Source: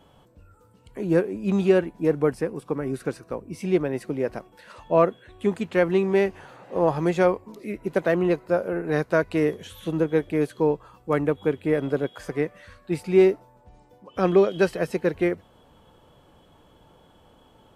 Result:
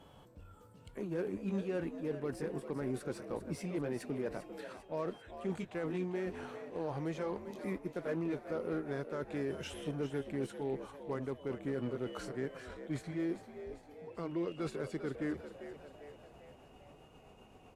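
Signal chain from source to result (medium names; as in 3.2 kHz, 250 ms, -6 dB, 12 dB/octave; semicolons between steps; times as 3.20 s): pitch bend over the whole clip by -3 st starting unshifted; reverse; compression 10:1, threshold -29 dBFS, peak gain reduction 16.5 dB; reverse; peak limiter -26 dBFS, peak gain reduction 7 dB; Chebyshev shaper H 8 -31 dB, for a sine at -26 dBFS; frequency-shifting echo 397 ms, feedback 53%, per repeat +68 Hz, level -11 dB; trim -2.5 dB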